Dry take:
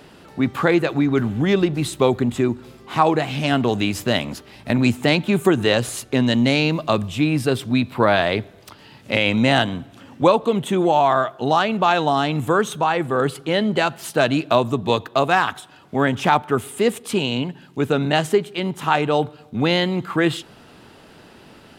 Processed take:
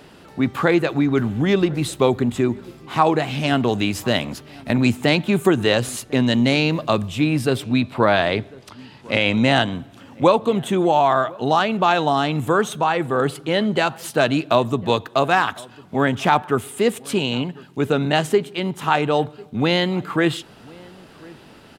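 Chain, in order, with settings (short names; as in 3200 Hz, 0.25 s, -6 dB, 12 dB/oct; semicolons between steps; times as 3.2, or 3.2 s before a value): 7.63–9.73 LPF 10000 Hz 12 dB/oct; outdoor echo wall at 180 m, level -23 dB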